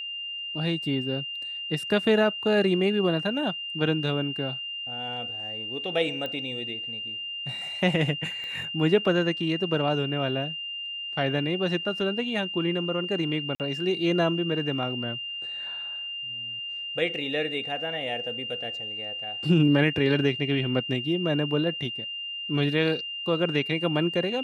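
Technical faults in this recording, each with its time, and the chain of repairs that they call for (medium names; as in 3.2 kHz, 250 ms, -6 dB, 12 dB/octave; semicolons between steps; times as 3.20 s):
whine 2.8 kHz -32 dBFS
6.26 s: pop -21 dBFS
8.44 s: pop -28 dBFS
13.55–13.60 s: dropout 48 ms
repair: de-click; band-stop 2.8 kHz, Q 30; interpolate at 13.55 s, 48 ms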